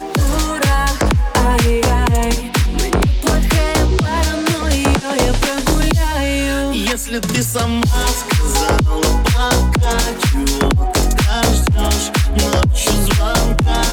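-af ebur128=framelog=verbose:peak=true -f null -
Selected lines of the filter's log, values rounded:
Integrated loudness:
  I:         -15.7 LUFS
  Threshold: -25.7 LUFS
Loudness range:
  LRA:         1.3 LU
  Threshold: -35.8 LUFS
  LRA low:   -16.6 LUFS
  LRA high:  -15.3 LUFS
True peak:
  Peak:       -5.9 dBFS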